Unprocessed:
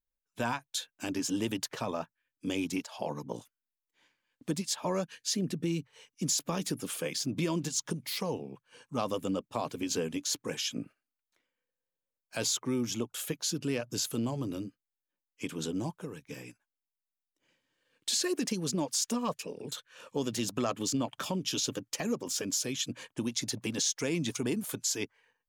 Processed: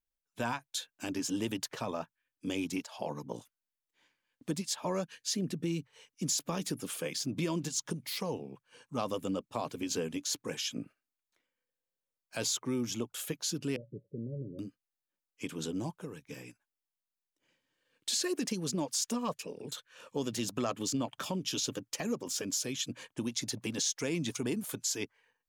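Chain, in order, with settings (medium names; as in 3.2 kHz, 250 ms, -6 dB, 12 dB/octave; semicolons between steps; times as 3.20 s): 13.76–14.59 s: rippled Chebyshev low-pass 580 Hz, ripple 9 dB; trim -2 dB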